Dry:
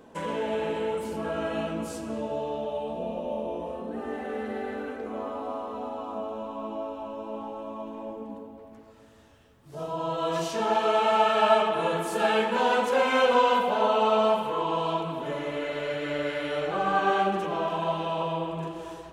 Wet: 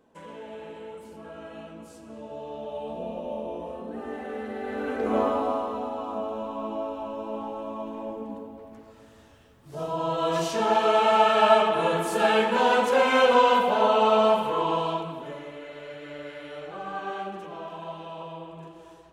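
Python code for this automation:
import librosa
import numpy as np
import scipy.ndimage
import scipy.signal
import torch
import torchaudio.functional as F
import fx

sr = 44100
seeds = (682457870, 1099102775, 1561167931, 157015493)

y = fx.gain(x, sr, db=fx.line((1.96, -11.5), (2.9, -1.5), (4.58, -1.5), (5.16, 11.0), (5.87, 2.5), (14.71, 2.5), (15.58, -9.5)))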